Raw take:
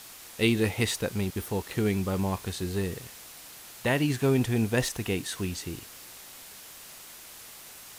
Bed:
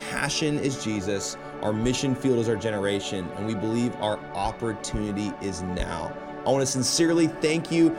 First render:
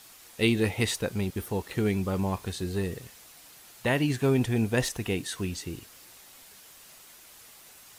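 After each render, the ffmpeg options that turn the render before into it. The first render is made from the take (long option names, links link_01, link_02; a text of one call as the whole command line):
ffmpeg -i in.wav -af "afftdn=noise_reduction=6:noise_floor=-47" out.wav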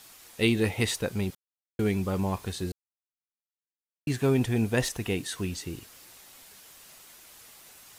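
ffmpeg -i in.wav -filter_complex "[0:a]asplit=5[link_01][link_02][link_03][link_04][link_05];[link_01]atrim=end=1.35,asetpts=PTS-STARTPTS,afade=type=out:start_time=1.346:duration=0.004:curve=hsin[link_06];[link_02]atrim=start=1.35:end=1.79,asetpts=PTS-STARTPTS,volume=0[link_07];[link_03]atrim=start=1.79:end=2.72,asetpts=PTS-STARTPTS,afade=type=in:duration=0.004:curve=hsin,afade=type=out:start_time=0.926:duration=0.004:curve=hsin[link_08];[link_04]atrim=start=2.72:end=4.07,asetpts=PTS-STARTPTS,volume=0[link_09];[link_05]atrim=start=4.07,asetpts=PTS-STARTPTS,afade=type=in:duration=0.004:curve=hsin[link_10];[link_06][link_07][link_08][link_09][link_10]concat=n=5:v=0:a=1" out.wav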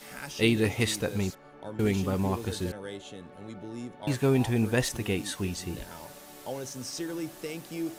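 ffmpeg -i in.wav -i bed.wav -filter_complex "[1:a]volume=-14dB[link_01];[0:a][link_01]amix=inputs=2:normalize=0" out.wav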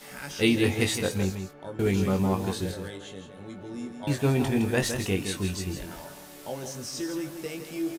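ffmpeg -i in.wav -filter_complex "[0:a]asplit=2[link_01][link_02];[link_02]adelay=21,volume=-5.5dB[link_03];[link_01][link_03]amix=inputs=2:normalize=0,aecho=1:1:163:0.398" out.wav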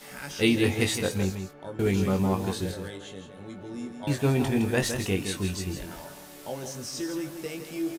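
ffmpeg -i in.wav -af anull out.wav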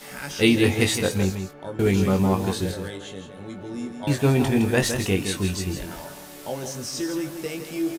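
ffmpeg -i in.wav -af "volume=4.5dB" out.wav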